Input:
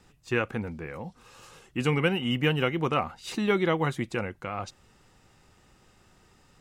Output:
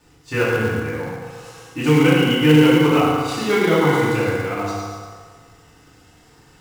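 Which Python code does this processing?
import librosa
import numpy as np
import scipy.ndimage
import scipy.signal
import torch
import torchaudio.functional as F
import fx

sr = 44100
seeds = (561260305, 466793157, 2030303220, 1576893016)

p1 = fx.echo_feedback(x, sr, ms=109, feedback_pct=45, wet_db=-6)
p2 = fx.rev_fdn(p1, sr, rt60_s=1.7, lf_ratio=0.75, hf_ratio=0.85, size_ms=20.0, drr_db=-10.0)
p3 = fx.quant_companded(p2, sr, bits=4)
p4 = p2 + (p3 * librosa.db_to_amplitude(-7.0))
y = p4 * librosa.db_to_amplitude(-5.0)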